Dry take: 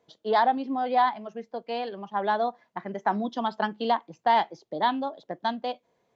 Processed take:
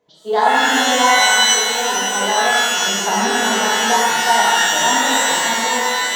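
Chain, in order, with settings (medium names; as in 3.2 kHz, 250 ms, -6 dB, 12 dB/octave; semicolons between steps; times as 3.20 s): repeats whose band climbs or falls 425 ms, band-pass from 2.9 kHz, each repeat -1.4 oct, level -3.5 dB; pitch-shifted reverb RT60 1.8 s, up +12 st, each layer -2 dB, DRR -6.5 dB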